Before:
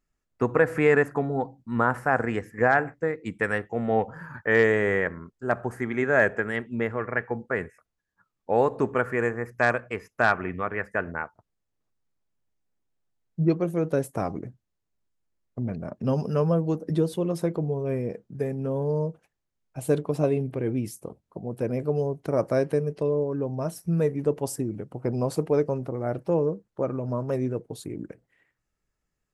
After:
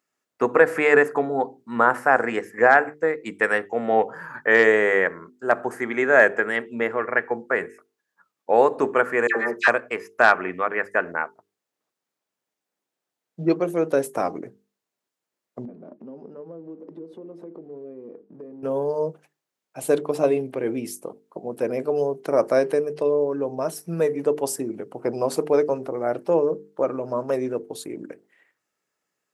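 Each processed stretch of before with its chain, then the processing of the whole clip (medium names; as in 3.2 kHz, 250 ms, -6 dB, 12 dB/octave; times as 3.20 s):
9.27–9.68 s: overdrive pedal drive 13 dB, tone 1.9 kHz, clips at -7.5 dBFS + comb 5.1 ms, depth 71% + phase dispersion lows, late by 89 ms, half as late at 1.4 kHz
15.65–18.63 s: companding laws mixed up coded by mu + band-pass filter 290 Hz, Q 1.7 + compression, threshold -38 dBFS
whole clip: high-pass 320 Hz 12 dB/octave; hum notches 50/100/150/200/250/300/350/400/450 Hz; trim +6 dB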